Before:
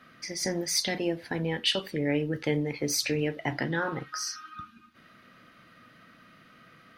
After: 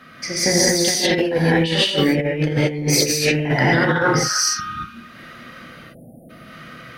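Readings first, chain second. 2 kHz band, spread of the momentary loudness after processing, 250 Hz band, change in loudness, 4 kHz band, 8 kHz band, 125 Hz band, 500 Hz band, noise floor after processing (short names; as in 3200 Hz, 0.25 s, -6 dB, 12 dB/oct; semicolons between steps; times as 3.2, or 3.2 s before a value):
+13.5 dB, 6 LU, +11.5 dB, +12.0 dB, +11.0 dB, +13.5 dB, +13.5 dB, +12.0 dB, -43 dBFS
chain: spectral delete 5.69–6.3, 860–8700 Hz; non-linear reverb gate 0.26 s rising, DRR -6.5 dB; negative-ratio compressor -24 dBFS, ratio -0.5; gain +7 dB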